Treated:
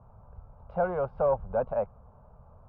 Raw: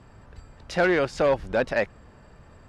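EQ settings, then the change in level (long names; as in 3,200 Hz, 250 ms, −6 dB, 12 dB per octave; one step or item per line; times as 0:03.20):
low-pass filter 1,500 Hz 24 dB per octave
phaser with its sweep stopped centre 770 Hz, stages 4
−1.5 dB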